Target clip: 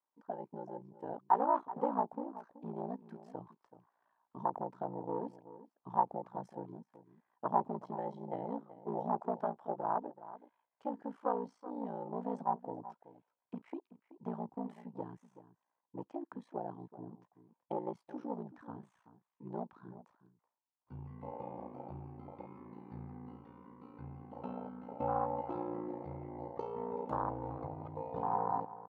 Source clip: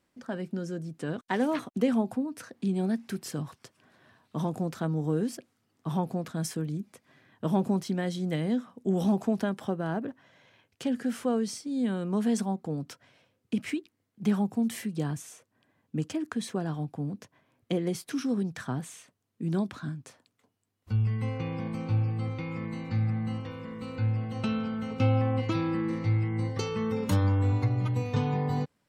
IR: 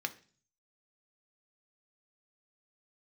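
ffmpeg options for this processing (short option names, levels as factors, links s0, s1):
-filter_complex "[0:a]afwtdn=0.0316,aeval=exprs='val(0)*sin(2*PI*29*n/s)':c=same,asplit=2[s0][s1];[s1]volume=17.8,asoftclip=hard,volume=0.0562,volume=0.316[s2];[s0][s2]amix=inputs=2:normalize=0,bandpass=f=920:t=q:w=4.4:csg=0,asplit=2[s3][s4];[s4]adelay=379,volume=0.178,highshelf=f=4000:g=-8.53[s5];[s3][s5]amix=inputs=2:normalize=0,volume=3.16"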